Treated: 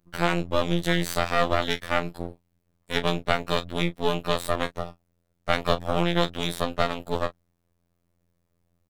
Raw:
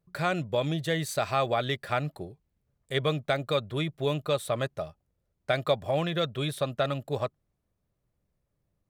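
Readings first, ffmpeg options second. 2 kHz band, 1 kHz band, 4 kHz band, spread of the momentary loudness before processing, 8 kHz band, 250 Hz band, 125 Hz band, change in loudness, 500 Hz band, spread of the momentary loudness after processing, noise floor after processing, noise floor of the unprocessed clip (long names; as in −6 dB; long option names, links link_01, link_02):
+5.0 dB, +4.5 dB, +4.5 dB, 7 LU, +3.5 dB, +5.0 dB, +0.5 dB, +3.0 dB, +1.5 dB, 8 LU, −74 dBFS, −79 dBFS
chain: -filter_complex "[0:a]asplit=2[link_01][link_02];[link_02]adelay=31,volume=-12dB[link_03];[link_01][link_03]amix=inputs=2:normalize=0,afftfilt=real='hypot(re,im)*cos(PI*b)':imag='0':win_size=2048:overlap=0.75,aeval=exprs='max(val(0),0)':channel_layout=same,volume=9dB"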